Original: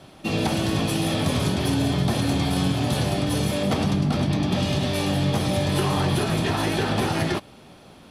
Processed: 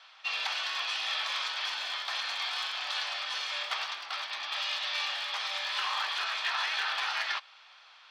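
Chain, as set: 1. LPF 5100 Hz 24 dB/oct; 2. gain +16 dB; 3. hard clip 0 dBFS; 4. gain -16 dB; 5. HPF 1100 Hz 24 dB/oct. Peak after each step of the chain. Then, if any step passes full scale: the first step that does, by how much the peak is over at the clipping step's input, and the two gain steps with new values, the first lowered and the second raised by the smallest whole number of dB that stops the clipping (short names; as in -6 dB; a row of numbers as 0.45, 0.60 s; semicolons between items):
-10.5, +5.5, 0.0, -16.0, -17.0 dBFS; step 2, 5.5 dB; step 2 +10 dB, step 4 -10 dB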